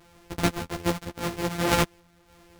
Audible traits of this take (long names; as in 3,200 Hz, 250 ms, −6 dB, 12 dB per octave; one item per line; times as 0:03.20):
a buzz of ramps at a fixed pitch in blocks of 256 samples
sample-and-hold tremolo
a shimmering, thickened sound